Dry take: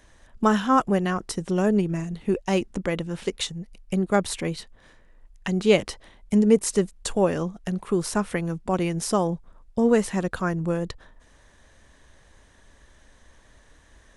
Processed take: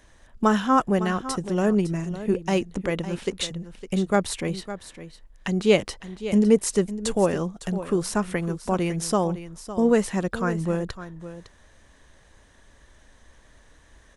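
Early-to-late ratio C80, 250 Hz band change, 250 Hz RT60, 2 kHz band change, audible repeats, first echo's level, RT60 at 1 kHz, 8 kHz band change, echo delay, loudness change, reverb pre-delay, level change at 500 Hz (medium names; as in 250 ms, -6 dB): no reverb, 0.0 dB, no reverb, 0.0 dB, 1, -13.0 dB, no reverb, 0.0 dB, 557 ms, 0.0 dB, no reverb, 0.0 dB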